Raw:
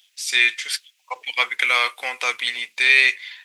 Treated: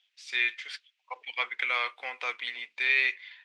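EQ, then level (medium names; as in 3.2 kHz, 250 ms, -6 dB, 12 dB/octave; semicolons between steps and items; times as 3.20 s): band-pass 230–3200 Hz; -9.0 dB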